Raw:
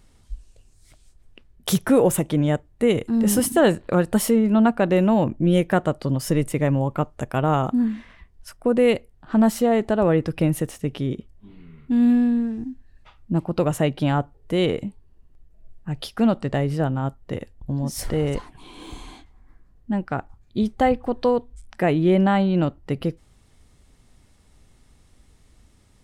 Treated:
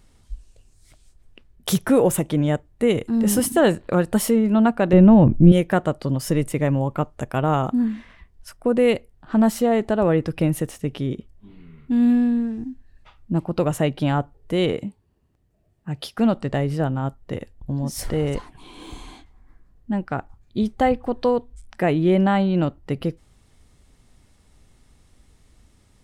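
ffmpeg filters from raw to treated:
-filter_complex "[0:a]asettb=1/sr,asplit=3[a][b][c];[a]atrim=end=4.934[d];[b]atrim=start=4.93:end=5.52,asetpts=PTS-STARTPTS,afade=t=in:d=0.004:c=qsin,afade=t=out:st=0.586:d=0.004:c=qsin,aemphasis=mode=reproduction:type=riaa[e];[c]atrim=start=5.516[f];[d][e]acrossfade=d=0.004:c1=hsin:c2=qsin[g];[g][f]acrossfade=d=0.004:c1=qsin:c2=hsin,asettb=1/sr,asplit=3[h][i][j];[h]atrim=end=14.734[k];[i]atrim=start=14.73:end=16.18,asetpts=PTS-STARTPTS,afade=t=in:d=0.004:c=qsin,afade=t=out:st=1.446:d=0.004:c=qsin,highpass=88[l];[j]atrim=start=16.176[m];[k][l]acrossfade=d=0.004:c1=hsin:c2=qsin[n];[n][m]acrossfade=d=0.004:c1=qsin:c2=hsin"

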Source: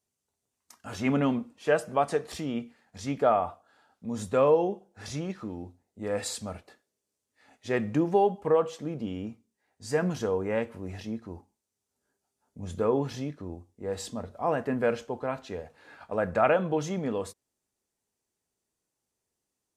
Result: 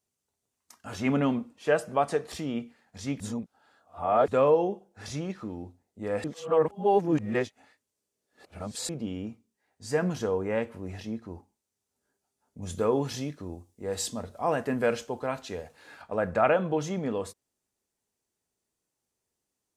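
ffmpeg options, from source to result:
-filter_complex "[0:a]asettb=1/sr,asplit=3[a][b][c];[a]atrim=end=12.624[d];[b]atrim=start=12.62:end=16.02,asetpts=PTS-STARTPTS,afade=t=in:d=0.004:c=qsin,afade=t=out:st=3.396:d=0.004:c=qsin,highshelf=f=3.7k:g=10[e];[c]atrim=start=16.016[f];[d][e]acrossfade=d=0.004:c1=hsin:c2=qsin[g];[g][f]acrossfade=d=0.004:c1=qsin:c2=hsin,asplit=5[h][i][j][k][l];[h]atrim=end=3.202[m];[i]atrim=start=3.198:end=4.282,asetpts=PTS-STARTPTS,areverse[n];[j]atrim=start=4.278:end=6.242[o];[k]atrim=start=6.238:end=8.892,asetpts=PTS-STARTPTS,areverse[p];[l]atrim=start=8.888[q];[m][n]acrossfade=d=0.004:c1=hsin:c2=hsin[r];[r][o]acrossfade=d=0.004:c1=hsin:c2=hsin[s];[s][p]acrossfade=d=0.004:c1=hsin:c2=hsin[t];[t][q]acrossfade=d=0.004:c1=hsin:c2=hsin"

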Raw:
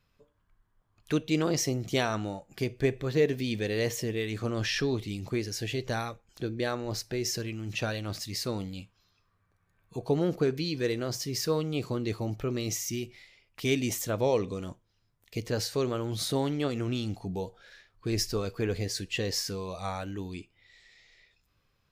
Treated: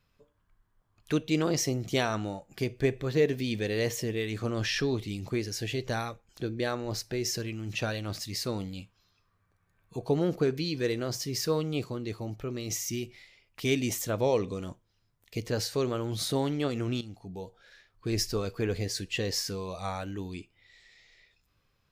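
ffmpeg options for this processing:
-filter_complex "[0:a]asplit=4[a][b][c][d];[a]atrim=end=11.842[e];[b]atrim=start=11.838:end=12.702,asetpts=PTS-STARTPTS,volume=-4dB[f];[c]atrim=start=12.698:end=17.01,asetpts=PTS-STARTPTS,afade=t=out:st=4.308:d=0.004:c=hsin:silence=0.251189[g];[d]atrim=start=17.01,asetpts=PTS-STARTPTS,afade=t=in:d=1.15:silence=0.251189[h];[e][f]acrossfade=d=0.004:c1=hsin:c2=hsin[i];[g][h]concat=n=2:v=0:a=1[j];[i][j]acrossfade=d=0.004:c1=hsin:c2=hsin"

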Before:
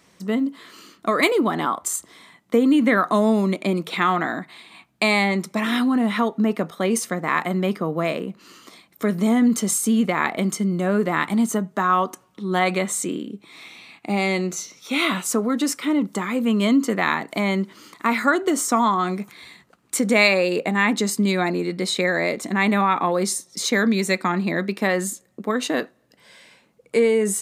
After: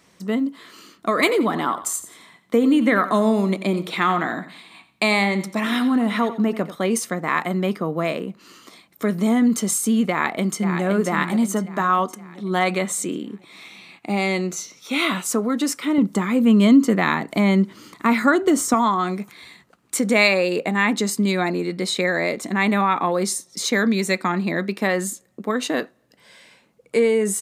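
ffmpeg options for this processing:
-filter_complex "[0:a]asettb=1/sr,asplit=3[a][b][c];[a]atrim=end=1.084[d];[b]atrim=start=1.08:end=6.76,asetpts=PTS-STARTPTS,afade=t=in:d=0.004:c=qsin,afade=t=out:st=5.676:d=0.004:c=qsin,aecho=1:1:89|178|267:0.211|0.0613|0.0178,atrim=end_sample=250488[e];[c]atrim=start=6.756[f];[d][e]acrossfade=d=0.004:c1=hsin:c2=qsin[g];[g][f]acrossfade=d=0.004:c1=qsin:c2=hsin,asplit=2[h][i];[i]afade=t=in:st=10.1:d=0.01,afade=t=out:st=10.84:d=0.01,aecho=0:1:520|1040|1560|2080|2600|3120:0.446684|0.223342|0.111671|0.0558354|0.0279177|0.0139589[j];[h][j]amix=inputs=2:normalize=0,asettb=1/sr,asplit=3[k][l][m];[k]atrim=end=15.984[n];[l]atrim=start=15.98:end=18.74,asetpts=PTS-STARTPTS,afade=t=in:d=0.004:c=qsin,afade=t=out:st=2.756:d=0.004:c=qsin,lowshelf=f=260:g=10[o];[m]atrim=start=18.736[p];[n][o]acrossfade=d=0.004:c1=hsin:c2=qsin[q];[q][p]acrossfade=d=0.004:c1=qsin:c2=hsin"

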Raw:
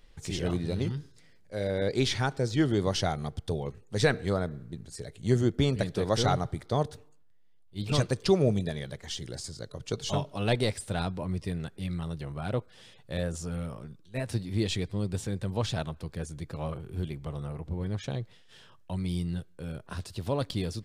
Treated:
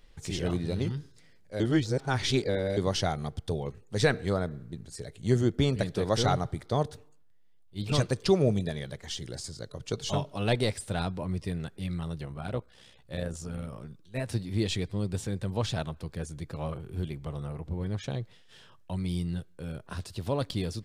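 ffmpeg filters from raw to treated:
-filter_complex "[0:a]asettb=1/sr,asplit=3[a][b][c];[a]atrim=end=12.264[d];[b]atrim=start=12.26:end=13.73,asetpts=PTS-STARTPTS,afade=t=in:d=0.004:c=qsin,afade=t=out:st=1.466:d=0.004:c=qsin,tremolo=f=63:d=0.571[e];[c]atrim=start=13.726[f];[d][e]acrossfade=d=0.004:c1=hsin:c2=qsin[g];[g][f]acrossfade=d=0.004:c1=qsin:c2=hsin,asplit=3[h][i][j];[h]atrim=end=1.602[k];[i]atrim=start=1.598:end=2.772,asetpts=PTS-STARTPTS,areverse[l];[j]atrim=start=2.768[m];[k][l]acrossfade=d=0.004:c1=hsin:c2=hsin[n];[n][m]acrossfade=d=0.004:c1=hsin:c2=hsin"

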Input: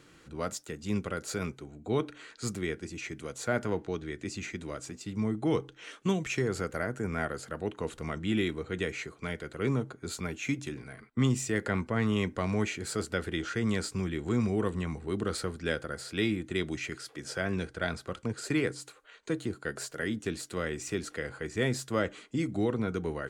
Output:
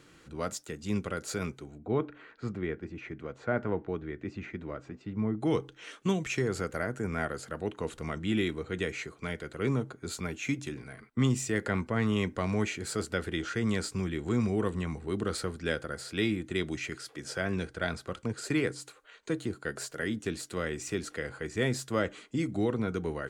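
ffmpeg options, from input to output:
-filter_complex "[0:a]asettb=1/sr,asplit=3[a][b][c];[a]atrim=end=1.784[d];[b]atrim=start=1.78:end=5.41,asetpts=PTS-STARTPTS,afade=t=in:d=0.004:c=qsin,afade=t=out:st=3.626:d=0.004:c=qsin,lowpass=1.9k[e];[c]atrim=start=5.406[f];[d][e]acrossfade=d=0.004:c1=hsin:c2=qsin[g];[g][f]acrossfade=d=0.004:c1=qsin:c2=hsin"

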